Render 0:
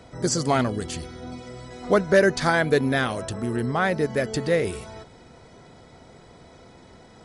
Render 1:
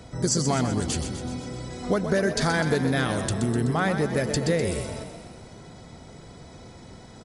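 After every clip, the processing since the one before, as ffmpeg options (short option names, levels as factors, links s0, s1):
-filter_complex "[0:a]bass=f=250:g=6,treble=f=4000:g=6,acompressor=threshold=0.1:ratio=6,asplit=2[s0][s1];[s1]asplit=7[s2][s3][s4][s5][s6][s7][s8];[s2]adelay=126,afreqshift=31,volume=0.355[s9];[s3]adelay=252,afreqshift=62,volume=0.209[s10];[s4]adelay=378,afreqshift=93,volume=0.123[s11];[s5]adelay=504,afreqshift=124,volume=0.0733[s12];[s6]adelay=630,afreqshift=155,volume=0.0432[s13];[s7]adelay=756,afreqshift=186,volume=0.0254[s14];[s8]adelay=882,afreqshift=217,volume=0.015[s15];[s9][s10][s11][s12][s13][s14][s15]amix=inputs=7:normalize=0[s16];[s0][s16]amix=inputs=2:normalize=0"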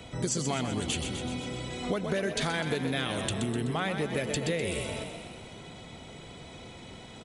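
-filter_complex "[0:a]lowshelf=f=170:g=-4.5,acrossover=split=530|3700[s0][s1][s2];[s1]aexciter=amount=5.9:drive=1.9:freq=2400[s3];[s0][s3][s2]amix=inputs=3:normalize=0,acompressor=threshold=0.0355:ratio=2.5"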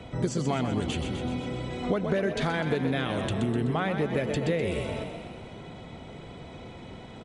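-af "lowpass=f=1600:p=1,volume=1.58"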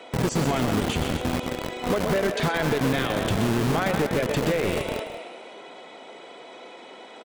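-filter_complex "[0:a]acrossover=split=330[s0][s1];[s0]acrusher=bits=4:mix=0:aa=0.000001[s2];[s2][s1]amix=inputs=2:normalize=0,asoftclip=type=hard:threshold=0.075,aecho=1:1:181:0.211,volume=1.68"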